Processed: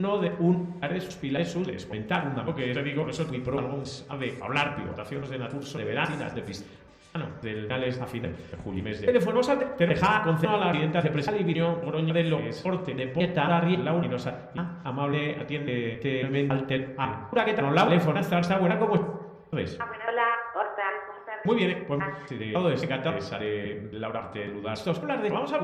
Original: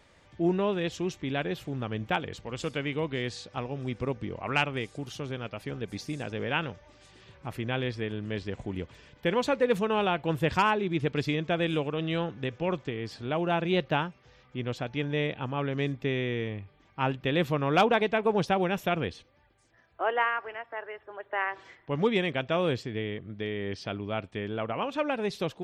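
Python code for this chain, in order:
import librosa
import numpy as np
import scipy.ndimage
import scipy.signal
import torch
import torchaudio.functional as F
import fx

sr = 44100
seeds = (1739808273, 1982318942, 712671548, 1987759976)

y = fx.block_reorder(x, sr, ms=275.0, group=3)
y = fx.rev_fdn(y, sr, rt60_s=1.1, lf_ratio=0.85, hf_ratio=0.3, size_ms=35.0, drr_db=2.5)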